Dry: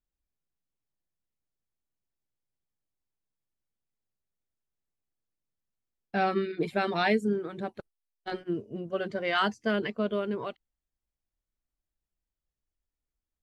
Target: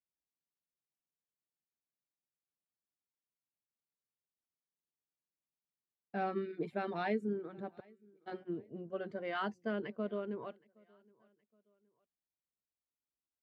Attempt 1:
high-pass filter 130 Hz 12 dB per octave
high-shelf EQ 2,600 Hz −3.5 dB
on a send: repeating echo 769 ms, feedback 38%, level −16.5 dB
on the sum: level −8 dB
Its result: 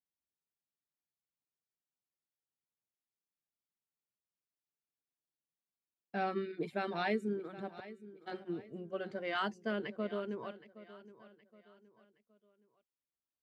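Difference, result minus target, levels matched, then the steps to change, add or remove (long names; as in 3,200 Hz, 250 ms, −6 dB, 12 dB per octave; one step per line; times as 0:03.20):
echo-to-direct +11 dB; 4,000 Hz band +5.5 dB
change: high-shelf EQ 2,600 Hz −14 dB
change: repeating echo 769 ms, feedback 38%, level −27.5 dB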